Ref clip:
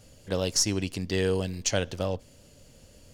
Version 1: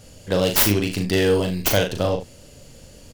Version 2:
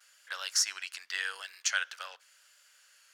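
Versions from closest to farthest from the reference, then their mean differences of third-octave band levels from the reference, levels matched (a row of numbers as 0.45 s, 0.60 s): 1, 2; 3.0 dB, 13.5 dB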